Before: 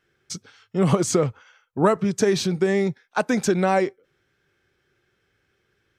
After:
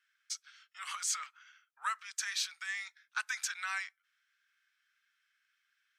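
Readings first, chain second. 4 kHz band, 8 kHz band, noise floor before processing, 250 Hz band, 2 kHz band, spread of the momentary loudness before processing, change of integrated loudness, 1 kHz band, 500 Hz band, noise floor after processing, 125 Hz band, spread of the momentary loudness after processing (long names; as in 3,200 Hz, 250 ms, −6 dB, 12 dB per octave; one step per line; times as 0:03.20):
−5.5 dB, −5.5 dB, −71 dBFS, below −40 dB, −6.0 dB, 16 LU, −15.0 dB, −15.0 dB, below −40 dB, −81 dBFS, below −40 dB, 10 LU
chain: Butterworth high-pass 1,300 Hz 36 dB per octave
level −5.5 dB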